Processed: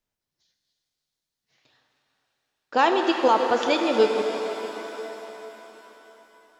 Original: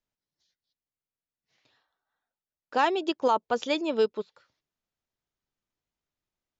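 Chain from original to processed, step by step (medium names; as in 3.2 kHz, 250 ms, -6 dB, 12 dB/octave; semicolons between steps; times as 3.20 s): echo whose repeats swap between lows and highs 157 ms, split 1 kHz, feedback 70%, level -12 dB; pitch-shifted reverb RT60 3.7 s, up +7 st, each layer -8 dB, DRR 4.5 dB; trim +4 dB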